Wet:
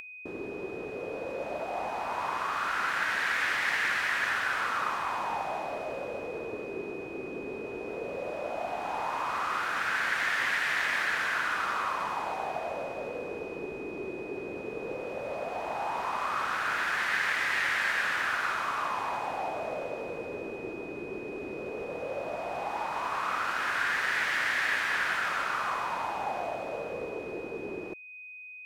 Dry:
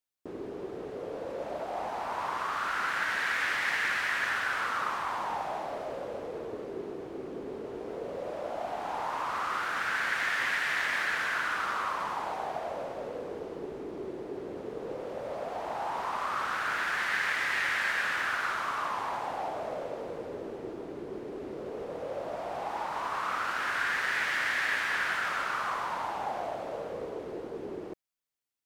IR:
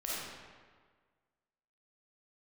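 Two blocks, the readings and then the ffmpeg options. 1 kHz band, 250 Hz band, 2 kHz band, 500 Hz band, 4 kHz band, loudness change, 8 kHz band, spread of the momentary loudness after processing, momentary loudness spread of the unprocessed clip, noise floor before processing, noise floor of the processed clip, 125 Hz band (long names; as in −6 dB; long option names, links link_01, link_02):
+1.0 dB, +1.0 dB, +1.0 dB, +1.0 dB, +1.0 dB, +1.0 dB, +1.0 dB, 11 LU, 12 LU, −42 dBFS, −40 dBFS, +1.0 dB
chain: -af "aeval=exprs='val(0)+0.00501*sin(2*PI*2500*n/s)':channel_layout=same,acompressor=mode=upward:threshold=-43dB:ratio=2.5,volume=1dB"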